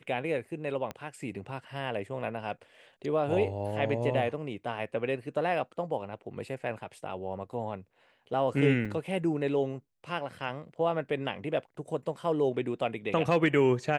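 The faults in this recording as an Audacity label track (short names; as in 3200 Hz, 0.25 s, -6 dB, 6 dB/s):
0.910000	0.910000	pop -22 dBFS
8.850000	8.860000	gap 5.5 ms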